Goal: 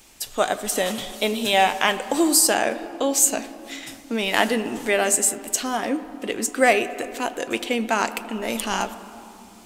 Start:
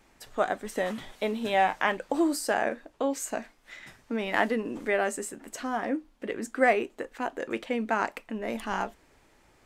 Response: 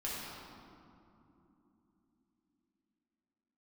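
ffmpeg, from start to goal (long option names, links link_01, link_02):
-filter_complex "[0:a]aexciter=amount=3.3:drive=5.8:freq=2600,asplit=2[link_01][link_02];[link_02]highpass=320,lowpass=3400[link_03];[1:a]atrim=start_sample=2205,lowshelf=frequency=300:gain=9.5,adelay=78[link_04];[link_03][link_04]afir=irnorm=-1:irlink=0,volume=-16.5dB[link_05];[link_01][link_05]amix=inputs=2:normalize=0,volume=5dB"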